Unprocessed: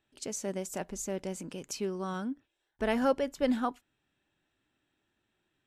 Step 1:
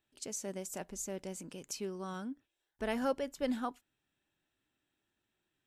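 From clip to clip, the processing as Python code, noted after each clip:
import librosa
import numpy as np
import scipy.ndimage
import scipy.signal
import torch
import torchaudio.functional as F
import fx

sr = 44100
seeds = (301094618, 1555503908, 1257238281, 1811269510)

y = fx.high_shelf(x, sr, hz=5100.0, db=6.0)
y = y * 10.0 ** (-6.0 / 20.0)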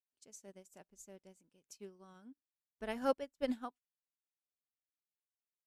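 y = fx.upward_expand(x, sr, threshold_db=-51.0, expansion=2.5)
y = y * 10.0 ** (2.0 / 20.0)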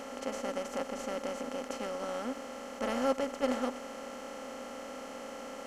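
y = fx.bin_compress(x, sr, power=0.2)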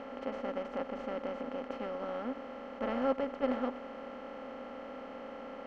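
y = fx.air_absorb(x, sr, metres=360.0)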